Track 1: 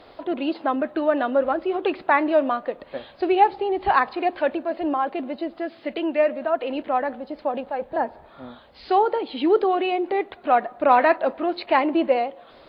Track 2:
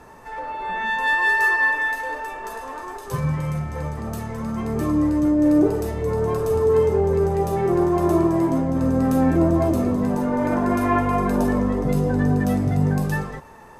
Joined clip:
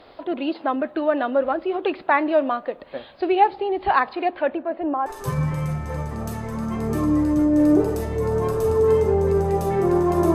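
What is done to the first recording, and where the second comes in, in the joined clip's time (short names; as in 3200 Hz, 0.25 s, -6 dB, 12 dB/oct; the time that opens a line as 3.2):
track 1
4.3–5.06 LPF 3500 Hz -> 1300 Hz
5.06 switch to track 2 from 2.92 s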